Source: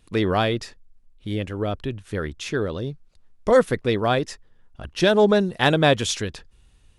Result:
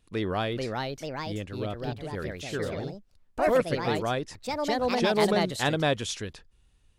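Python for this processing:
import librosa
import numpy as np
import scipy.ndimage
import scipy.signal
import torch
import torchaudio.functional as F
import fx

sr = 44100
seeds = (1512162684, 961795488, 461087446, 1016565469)

y = fx.echo_pitch(x, sr, ms=462, semitones=3, count=2, db_per_echo=-3.0)
y = F.gain(torch.from_numpy(y), -8.0).numpy()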